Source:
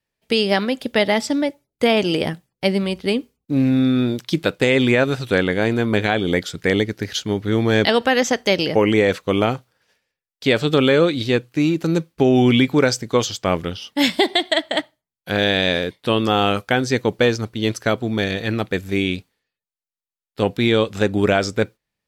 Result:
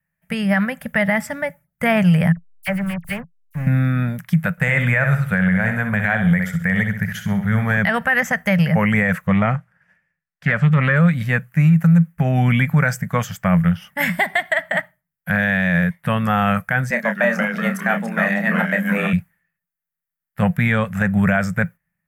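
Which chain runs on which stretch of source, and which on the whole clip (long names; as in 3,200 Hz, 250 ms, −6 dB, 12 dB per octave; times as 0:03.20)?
0:02.32–0:03.67: parametric band 190 Hz −10.5 dB 2.3 octaves + slack as between gear wheels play −25.5 dBFS + all-pass dispersion lows, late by 45 ms, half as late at 2,800 Hz
0:04.51–0:07.77: parametric band 300 Hz −13.5 dB 0.24 octaves + flutter between parallel walls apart 11.1 metres, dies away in 0.47 s
0:09.27–0:10.96: high-frequency loss of the air 77 metres + highs frequency-modulated by the lows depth 0.14 ms
0:16.90–0:19.13: delay with pitch and tempo change per echo 124 ms, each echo −3 semitones, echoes 3, each echo −6 dB + frequency shifter +110 Hz + double-tracking delay 30 ms −8 dB
whole clip: drawn EQ curve 120 Hz 0 dB, 170 Hz +13 dB, 330 Hz −28 dB, 610 Hz −4 dB, 970 Hz −5 dB, 1,800 Hz +6 dB, 4,000 Hz −24 dB, 13,000 Hz +4 dB; automatic gain control gain up to 3.5 dB; boost into a limiter +8.5 dB; level −6.5 dB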